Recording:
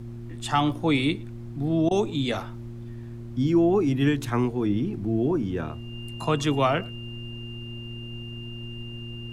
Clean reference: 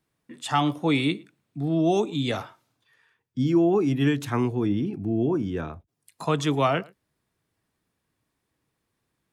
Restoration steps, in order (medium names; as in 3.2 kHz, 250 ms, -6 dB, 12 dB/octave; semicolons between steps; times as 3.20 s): de-hum 117.3 Hz, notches 3; band-stop 2.8 kHz, Q 30; interpolate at 1.89 s, 18 ms; noise print and reduce 30 dB